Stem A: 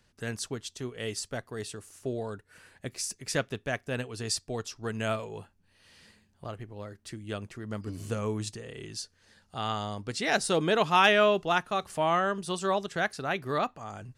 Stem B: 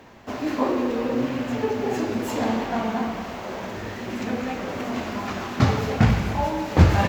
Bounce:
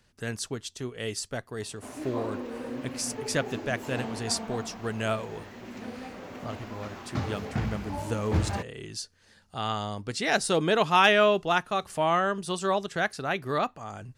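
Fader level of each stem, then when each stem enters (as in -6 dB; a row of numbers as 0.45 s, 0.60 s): +1.5 dB, -12.0 dB; 0.00 s, 1.55 s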